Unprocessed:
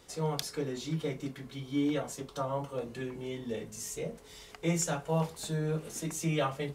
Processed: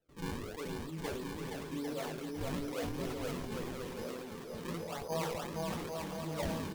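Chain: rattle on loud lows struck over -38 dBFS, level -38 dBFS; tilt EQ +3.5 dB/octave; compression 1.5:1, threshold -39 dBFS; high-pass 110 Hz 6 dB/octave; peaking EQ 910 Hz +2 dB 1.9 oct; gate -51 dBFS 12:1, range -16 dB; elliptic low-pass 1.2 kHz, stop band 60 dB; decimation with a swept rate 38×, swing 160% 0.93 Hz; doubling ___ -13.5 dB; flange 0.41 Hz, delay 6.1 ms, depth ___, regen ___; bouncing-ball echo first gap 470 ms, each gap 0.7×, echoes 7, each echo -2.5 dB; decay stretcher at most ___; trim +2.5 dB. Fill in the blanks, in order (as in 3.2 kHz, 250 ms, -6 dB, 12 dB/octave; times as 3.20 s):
12 ms, 7.8 ms, -37%, 26 dB/s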